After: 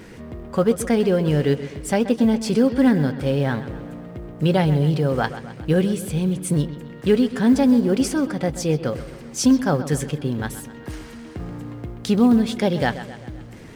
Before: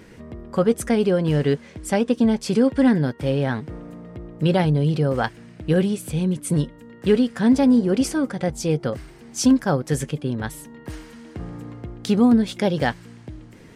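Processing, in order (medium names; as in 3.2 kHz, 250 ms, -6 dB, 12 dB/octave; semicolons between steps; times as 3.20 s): companding laws mixed up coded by mu; bucket-brigade echo 130 ms, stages 4096, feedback 54%, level -13.5 dB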